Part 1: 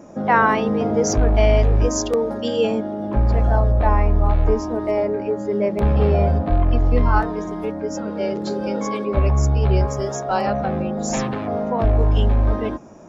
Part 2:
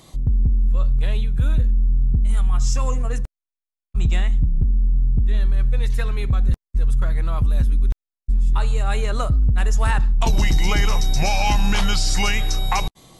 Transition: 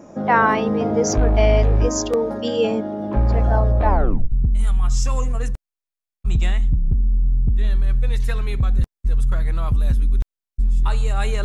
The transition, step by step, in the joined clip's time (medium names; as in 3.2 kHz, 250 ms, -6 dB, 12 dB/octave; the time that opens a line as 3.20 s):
part 1
3.89 s: tape stop 0.43 s
4.32 s: go over to part 2 from 2.02 s